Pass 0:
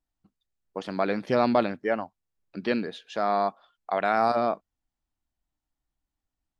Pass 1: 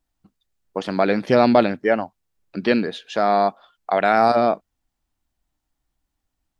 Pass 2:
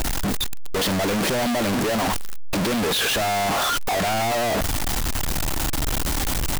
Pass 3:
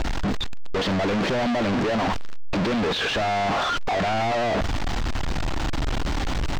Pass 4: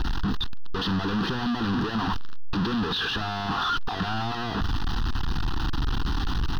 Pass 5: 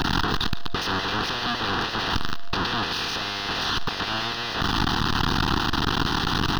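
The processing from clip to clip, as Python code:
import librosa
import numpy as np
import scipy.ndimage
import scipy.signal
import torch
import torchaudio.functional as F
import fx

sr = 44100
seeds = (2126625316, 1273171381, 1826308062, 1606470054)

y1 = fx.dynamic_eq(x, sr, hz=1100.0, q=3.0, threshold_db=-39.0, ratio=4.0, max_db=-5)
y1 = y1 * 10.0 ** (8.0 / 20.0)
y2 = np.sign(y1) * np.sqrt(np.mean(np.square(y1)))
y3 = fx.air_absorb(y2, sr, metres=160.0)
y4 = fx.fixed_phaser(y3, sr, hz=2200.0, stages=6)
y5 = fx.spec_clip(y4, sr, under_db=22)
y5 = fx.echo_thinned(y5, sr, ms=146, feedback_pct=45, hz=420.0, wet_db=-16.5)
y5 = y5 + 10.0 ** (-49.0 / 20.0) * np.sin(2.0 * np.pi * 690.0 * np.arange(len(y5)) / sr)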